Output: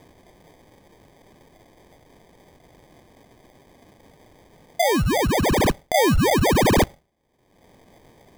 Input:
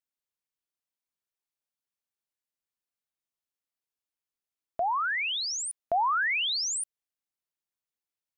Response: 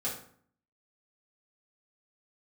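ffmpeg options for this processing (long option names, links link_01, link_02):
-filter_complex "[0:a]aemphasis=mode=production:type=cd,asplit=2[link_01][link_02];[1:a]atrim=start_sample=2205[link_03];[link_02][link_03]afir=irnorm=-1:irlink=0,volume=-22.5dB[link_04];[link_01][link_04]amix=inputs=2:normalize=0,acompressor=mode=upward:threshold=-40dB:ratio=2.5,acrusher=samples=32:mix=1:aa=0.000001,volume=8dB"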